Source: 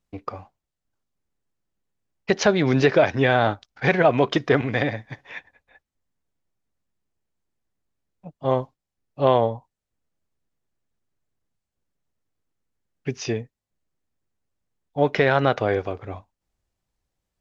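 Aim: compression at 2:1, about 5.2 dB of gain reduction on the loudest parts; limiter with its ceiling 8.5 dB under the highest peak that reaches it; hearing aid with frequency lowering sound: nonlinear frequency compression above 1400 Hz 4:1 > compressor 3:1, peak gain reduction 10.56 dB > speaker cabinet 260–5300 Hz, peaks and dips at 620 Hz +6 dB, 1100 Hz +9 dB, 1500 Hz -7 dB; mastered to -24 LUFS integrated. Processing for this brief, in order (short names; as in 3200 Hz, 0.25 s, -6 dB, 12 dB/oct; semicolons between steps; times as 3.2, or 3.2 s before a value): compressor 2:1, threshold -22 dBFS; limiter -15 dBFS; nonlinear frequency compression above 1400 Hz 4:1; compressor 3:1, threshold -34 dBFS; speaker cabinet 260–5300 Hz, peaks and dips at 620 Hz +6 dB, 1100 Hz +9 dB, 1500 Hz -7 dB; gain +12.5 dB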